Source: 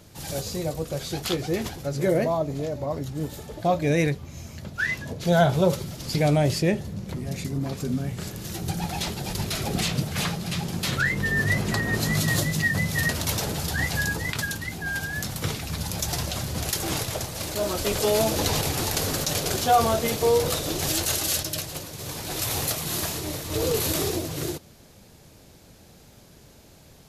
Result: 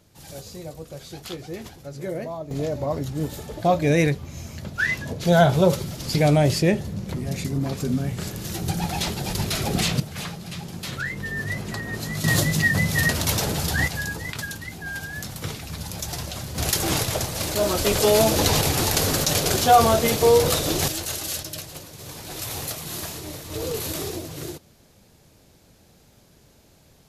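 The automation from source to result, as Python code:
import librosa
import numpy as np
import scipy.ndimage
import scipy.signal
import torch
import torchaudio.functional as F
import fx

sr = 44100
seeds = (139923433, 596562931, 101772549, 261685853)

y = fx.gain(x, sr, db=fx.steps((0.0, -8.0), (2.51, 3.0), (10.0, -5.5), (12.24, 3.5), (13.88, -3.0), (16.58, 4.5), (20.88, -4.0)))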